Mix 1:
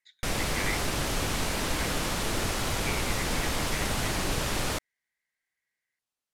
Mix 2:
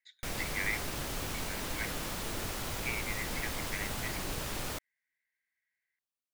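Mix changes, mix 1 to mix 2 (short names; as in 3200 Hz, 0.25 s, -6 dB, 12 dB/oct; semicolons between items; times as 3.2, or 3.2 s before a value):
background -8.5 dB; master: remove Bessel low-pass 11000 Hz, order 4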